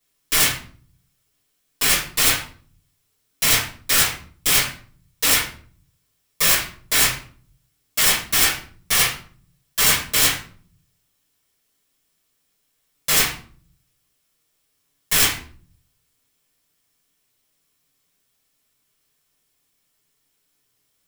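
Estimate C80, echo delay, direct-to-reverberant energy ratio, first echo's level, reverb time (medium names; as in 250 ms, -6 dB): 13.0 dB, no echo, -8.0 dB, no echo, 0.50 s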